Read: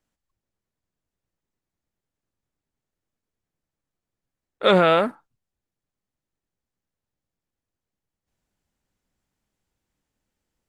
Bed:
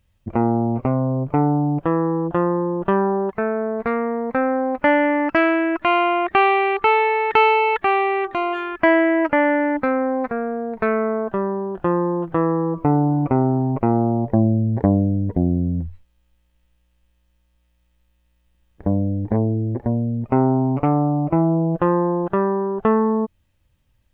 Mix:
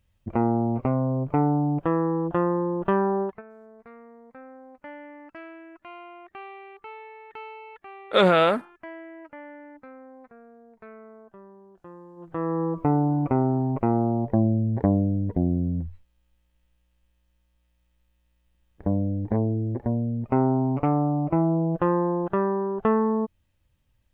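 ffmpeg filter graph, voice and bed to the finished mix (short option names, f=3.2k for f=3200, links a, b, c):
-filter_complex "[0:a]adelay=3500,volume=-1.5dB[a];[1:a]volume=17dB,afade=t=out:st=3.22:d=0.2:silence=0.0841395,afade=t=in:st=12.16:d=0.47:silence=0.0891251[b];[a][b]amix=inputs=2:normalize=0"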